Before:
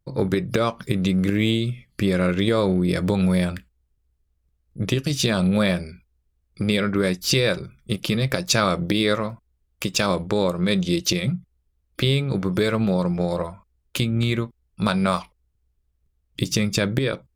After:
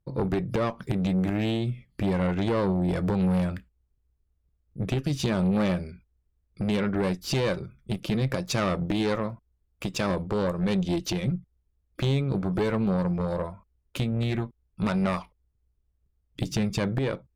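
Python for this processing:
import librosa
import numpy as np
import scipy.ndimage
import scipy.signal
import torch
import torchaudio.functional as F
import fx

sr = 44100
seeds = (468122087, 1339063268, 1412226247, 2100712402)

y = fx.high_shelf(x, sr, hz=2100.0, db=-10.0)
y = fx.cheby_harmonics(y, sr, harmonics=(4, 5), levels_db=(-13, -13), full_scale_db=-7.0)
y = y * librosa.db_to_amplitude(-8.5)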